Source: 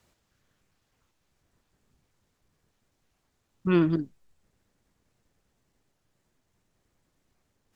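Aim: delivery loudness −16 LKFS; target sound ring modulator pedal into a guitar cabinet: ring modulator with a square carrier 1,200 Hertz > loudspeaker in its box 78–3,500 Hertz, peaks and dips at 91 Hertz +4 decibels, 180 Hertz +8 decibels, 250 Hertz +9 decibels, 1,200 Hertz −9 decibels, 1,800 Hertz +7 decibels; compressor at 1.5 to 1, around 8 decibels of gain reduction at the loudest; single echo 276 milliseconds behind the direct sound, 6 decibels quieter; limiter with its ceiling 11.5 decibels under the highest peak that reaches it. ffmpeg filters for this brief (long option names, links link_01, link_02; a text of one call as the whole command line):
ffmpeg -i in.wav -af "acompressor=threshold=-40dB:ratio=1.5,alimiter=level_in=7dB:limit=-24dB:level=0:latency=1,volume=-7dB,aecho=1:1:276:0.501,aeval=exprs='val(0)*sgn(sin(2*PI*1200*n/s))':channel_layout=same,highpass=78,equalizer=frequency=91:width_type=q:width=4:gain=4,equalizer=frequency=180:width_type=q:width=4:gain=8,equalizer=frequency=250:width_type=q:width=4:gain=9,equalizer=frequency=1200:width_type=q:width=4:gain=-9,equalizer=frequency=1800:width_type=q:width=4:gain=7,lowpass=frequency=3500:width=0.5412,lowpass=frequency=3500:width=1.3066,volume=25.5dB" out.wav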